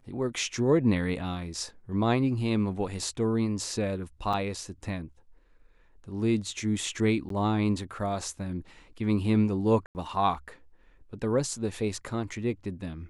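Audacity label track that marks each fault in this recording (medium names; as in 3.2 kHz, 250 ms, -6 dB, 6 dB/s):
4.330000	4.340000	dropout 5.3 ms
7.290000	7.300000	dropout 13 ms
9.860000	9.950000	dropout 89 ms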